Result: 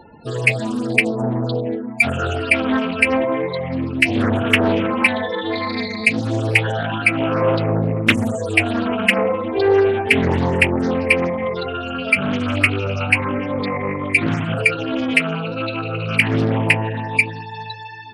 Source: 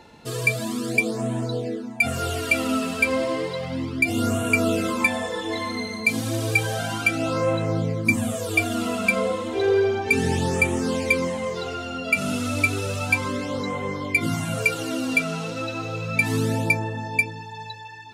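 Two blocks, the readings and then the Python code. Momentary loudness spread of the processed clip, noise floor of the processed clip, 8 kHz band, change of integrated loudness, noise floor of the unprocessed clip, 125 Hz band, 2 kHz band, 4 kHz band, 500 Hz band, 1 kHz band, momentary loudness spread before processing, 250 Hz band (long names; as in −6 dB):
7 LU, −32 dBFS, −4.0 dB, +5.0 dB, −37 dBFS, +5.0 dB, +5.5 dB, +6.0 dB, +5.5 dB, +5.5 dB, 7 LU, +5.5 dB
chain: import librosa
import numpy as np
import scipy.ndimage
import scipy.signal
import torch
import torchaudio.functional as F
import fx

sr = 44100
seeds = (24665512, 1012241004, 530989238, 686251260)

y = fx.spec_topn(x, sr, count=32)
y = fx.doppler_dist(y, sr, depth_ms=0.5)
y = y * 10.0 ** (5.5 / 20.0)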